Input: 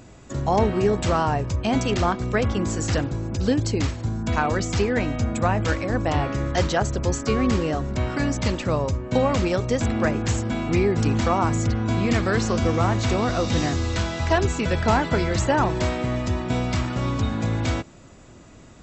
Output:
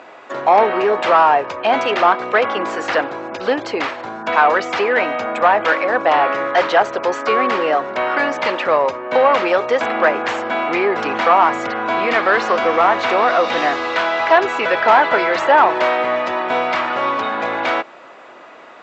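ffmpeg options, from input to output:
ffmpeg -i in.wav -filter_complex "[0:a]asplit=2[link_01][link_02];[link_02]highpass=frequency=720:poles=1,volume=17dB,asoftclip=type=tanh:threshold=-6.5dB[link_03];[link_01][link_03]amix=inputs=2:normalize=0,lowpass=frequency=1300:poles=1,volume=-6dB,highpass=590,lowpass=3300,volume=8dB" out.wav

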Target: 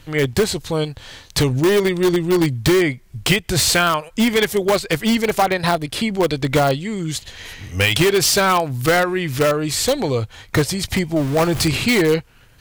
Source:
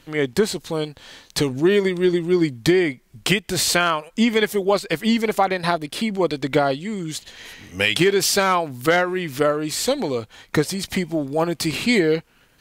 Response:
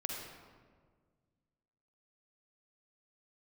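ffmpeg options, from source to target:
-filter_complex "[0:a]asettb=1/sr,asplit=3[link_01][link_02][link_03];[link_01]atrim=end=11.164[link_04];[link_02]atrim=start=11.16:end=11.68,asetpts=PTS-STARTPTS,afade=type=in:duration=0.004:curve=qsin,afade=type=out:start_time=0.516:duration=0.004:curve=qsin,aeval=exprs='val(0)+0.5*0.0398*sgn(val(0))':channel_layout=same[link_05];[link_03]atrim=start=11.676[link_06];[link_04][link_05]acrossfade=duration=0.004:curve1=hsin:curve2=qsin[link_07];[link_07][link_06]acrossfade=duration=0.004:curve1=qsin:curve2=hsin,lowshelf=frequency=150:width_type=q:width=1.5:gain=8,asplit=2[link_08][link_09];[link_09]aeval=exprs='(mod(4.22*val(0)+1,2)-1)/4.22':channel_layout=same,volume=-8dB[link_10];[link_08][link_10]amix=inputs=2:normalize=0,volume=1dB"

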